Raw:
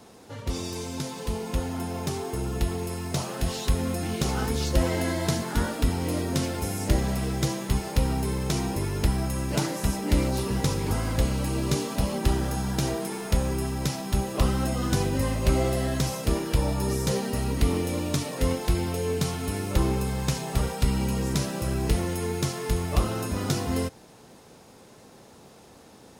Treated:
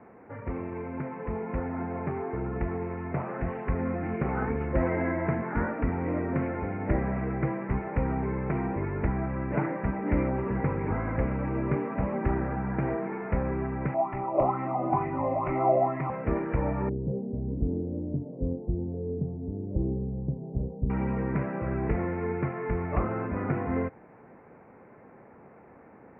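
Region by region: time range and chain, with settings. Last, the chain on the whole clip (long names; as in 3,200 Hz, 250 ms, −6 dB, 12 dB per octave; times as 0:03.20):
0:13.94–0:16.10: parametric band 73 Hz −7 dB 1.7 octaves + phaser with its sweep stopped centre 320 Hz, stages 8 + auto-filter bell 2.2 Hz 550–1,800 Hz +18 dB
0:16.89–0:20.90: Gaussian smoothing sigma 18 samples + one half of a high-frequency compander decoder only
whole clip: Butterworth low-pass 2,300 Hz 72 dB per octave; low-shelf EQ 84 Hz −9 dB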